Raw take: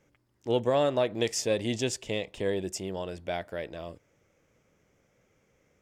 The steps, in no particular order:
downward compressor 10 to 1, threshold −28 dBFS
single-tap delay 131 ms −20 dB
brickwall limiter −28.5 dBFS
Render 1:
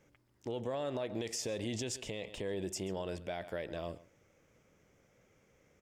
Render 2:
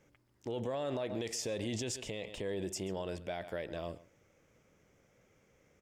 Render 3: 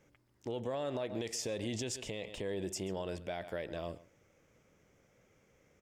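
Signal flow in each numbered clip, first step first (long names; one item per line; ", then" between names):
downward compressor, then single-tap delay, then brickwall limiter
single-tap delay, then brickwall limiter, then downward compressor
single-tap delay, then downward compressor, then brickwall limiter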